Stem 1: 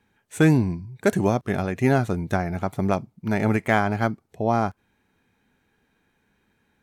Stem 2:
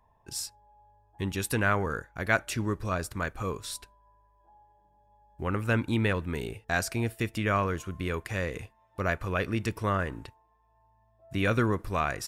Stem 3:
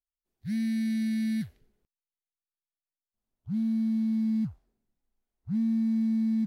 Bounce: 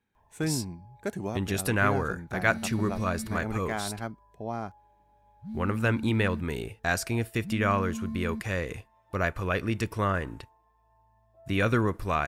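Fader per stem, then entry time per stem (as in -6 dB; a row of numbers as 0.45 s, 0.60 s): -12.5 dB, +1.0 dB, -9.0 dB; 0.00 s, 0.15 s, 1.95 s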